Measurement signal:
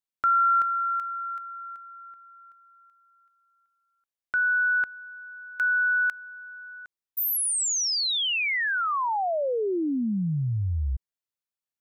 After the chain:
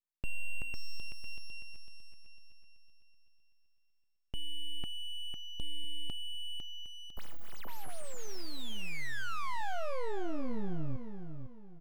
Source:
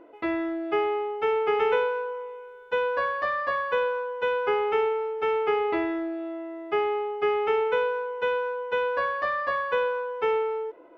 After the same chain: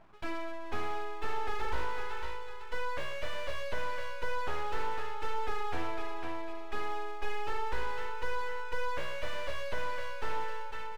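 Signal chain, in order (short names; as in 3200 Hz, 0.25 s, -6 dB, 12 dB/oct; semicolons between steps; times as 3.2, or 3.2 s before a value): full-wave rectifier; feedback echo 0.502 s, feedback 35%, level -7.5 dB; slew limiter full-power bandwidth 41 Hz; gain -6 dB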